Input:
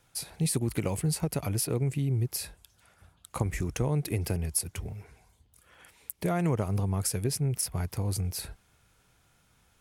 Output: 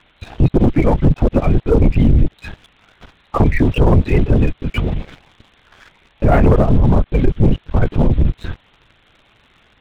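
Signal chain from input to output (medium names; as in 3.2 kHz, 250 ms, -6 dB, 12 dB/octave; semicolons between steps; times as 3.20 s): loudest bins only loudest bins 32; in parallel at -4 dB: word length cut 8-bit, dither triangular; on the sum: LPC vocoder at 8 kHz whisper; waveshaping leveller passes 2; trim +8 dB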